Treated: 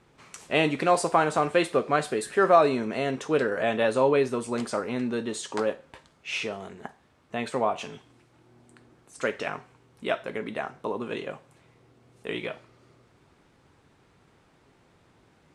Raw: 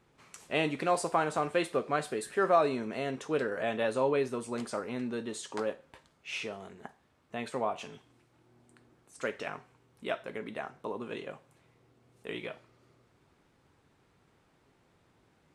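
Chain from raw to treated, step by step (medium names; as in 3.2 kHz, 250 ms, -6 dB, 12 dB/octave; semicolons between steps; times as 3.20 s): low-pass 11 kHz 12 dB/octave; trim +6.5 dB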